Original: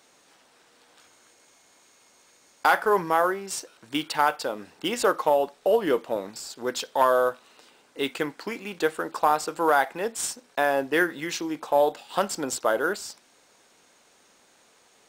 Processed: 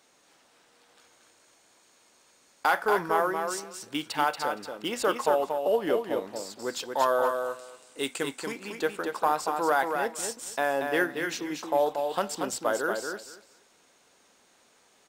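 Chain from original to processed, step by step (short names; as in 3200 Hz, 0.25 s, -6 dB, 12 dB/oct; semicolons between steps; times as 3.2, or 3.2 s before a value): 7.29–8.52 bell 8200 Hz +13.5 dB 0.85 oct; on a send: feedback echo 0.233 s, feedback 16%, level -5.5 dB; on the sum: gain -4 dB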